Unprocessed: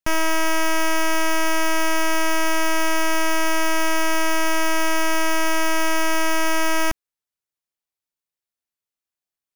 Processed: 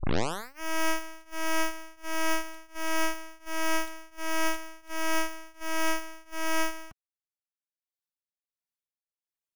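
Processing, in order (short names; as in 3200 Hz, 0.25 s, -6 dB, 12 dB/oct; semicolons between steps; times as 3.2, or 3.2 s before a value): tape start at the beginning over 0.60 s; tremolo triangle 1.4 Hz, depth 95%; reverb removal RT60 1.1 s; gain -3.5 dB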